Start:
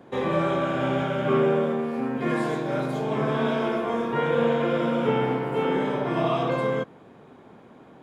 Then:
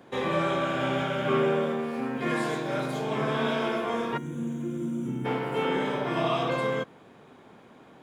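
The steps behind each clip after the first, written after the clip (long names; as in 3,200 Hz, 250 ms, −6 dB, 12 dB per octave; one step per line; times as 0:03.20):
gain on a spectral selection 0:04.17–0:05.25, 380–5,800 Hz −22 dB
tilt shelving filter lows −4 dB, about 1,500 Hz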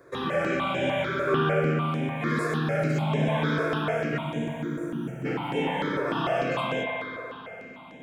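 spring reverb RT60 3.4 s, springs 58 ms, chirp 45 ms, DRR −0.5 dB
step-sequenced phaser 6.7 Hz 810–4,500 Hz
level +2 dB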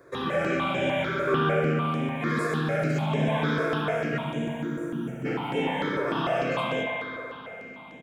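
repeating echo 73 ms, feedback 57%, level −14 dB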